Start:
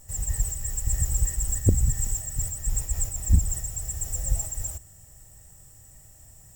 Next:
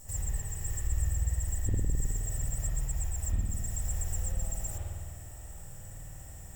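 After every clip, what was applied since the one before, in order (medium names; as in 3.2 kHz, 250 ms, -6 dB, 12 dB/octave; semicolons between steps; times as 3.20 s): compression 5:1, threshold -34 dBFS, peak gain reduction 19 dB; spring tank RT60 1.8 s, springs 52 ms, chirp 80 ms, DRR -6.5 dB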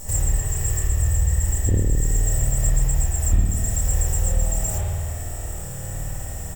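peaking EQ 460 Hz +4 dB 0.97 oct; in parallel at 0 dB: compression, threshold -36 dBFS, peak gain reduction 13 dB; on the sum: doubling 29 ms -4.5 dB; trim +7.5 dB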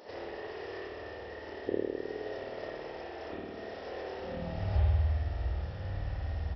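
peaking EQ 140 Hz -10.5 dB 0.54 oct; high-pass sweep 400 Hz -> 62 Hz, 4.15–4.79 s; resampled via 11.025 kHz; trim -5 dB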